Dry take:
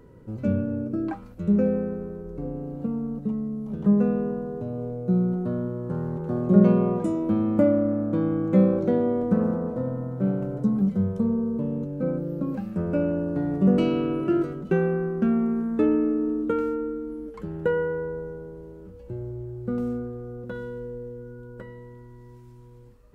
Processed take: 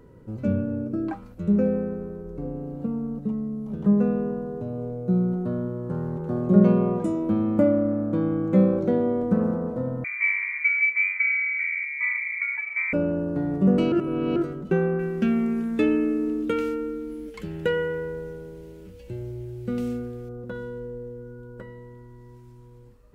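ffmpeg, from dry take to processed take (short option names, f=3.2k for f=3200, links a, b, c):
-filter_complex "[0:a]asettb=1/sr,asplit=3[a][b][c];[a]atrim=end=10.044[d];[b]atrim=start=10.04:end=12.93,asetpts=PTS-STARTPTS,afade=t=in:d=0.004:c=qsin,afade=t=out:st=2.886:d=0.004:c=qsin,lowpass=f=2.1k:t=q:w=0.5098,lowpass=f=2.1k:t=q:w=0.6013,lowpass=f=2.1k:t=q:w=0.9,lowpass=f=2.1k:t=q:w=2.563,afreqshift=-2500[e];[c]atrim=start=12.926[f];[d][e]acrossfade=d=0.004:c1=hsin:c2=qsin[g];[g][f]acrossfade=d=0.004:c1=qsin:c2=hsin,asettb=1/sr,asplit=3[h][i][j];[h]atrim=end=14.994[k];[i]atrim=start=14.99:end=20.29,asetpts=PTS-STARTPTS,afade=t=in:d=0.004:c=qsin,afade=t=out:st=5.296:d=0.004:c=qsin,highshelf=f=1.7k:t=q:w=1.5:g=11[l];[j]atrim=start=20.286[m];[k][l]acrossfade=d=0.004:c1=hsin:c2=qsin[n];[n][m]acrossfade=d=0.004:c1=qsin:c2=hsin,asplit=3[o][p][q];[o]atrim=end=13.922[r];[p]atrim=start=13.918:end=14.362,asetpts=PTS-STARTPTS,areverse[s];[q]atrim=start=14.358[t];[r][s]acrossfade=d=0.004:c1=hsin:c2=hsin[u];[u][t]acrossfade=d=0.004:c1=hsin:c2=hsin"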